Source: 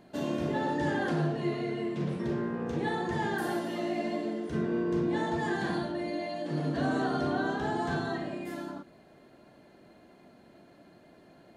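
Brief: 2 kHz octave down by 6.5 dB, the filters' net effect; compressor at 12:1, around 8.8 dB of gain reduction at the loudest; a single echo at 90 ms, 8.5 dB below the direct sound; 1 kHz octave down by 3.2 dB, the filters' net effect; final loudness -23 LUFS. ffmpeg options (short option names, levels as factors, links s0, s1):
-af "equalizer=f=1000:t=o:g=-3,equalizer=f=2000:t=o:g=-7.5,acompressor=threshold=0.0178:ratio=12,aecho=1:1:90:0.376,volume=6.68"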